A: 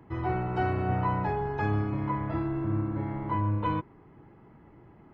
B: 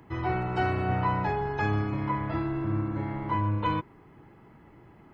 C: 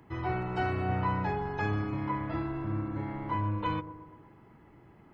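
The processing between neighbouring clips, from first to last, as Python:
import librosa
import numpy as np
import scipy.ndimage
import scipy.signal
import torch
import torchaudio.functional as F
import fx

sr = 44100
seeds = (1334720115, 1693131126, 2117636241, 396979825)

y1 = fx.high_shelf(x, sr, hz=2000.0, db=9.5)
y2 = fx.echo_wet_lowpass(y1, sr, ms=119, feedback_pct=57, hz=910.0, wet_db=-13)
y2 = y2 * librosa.db_to_amplitude(-3.5)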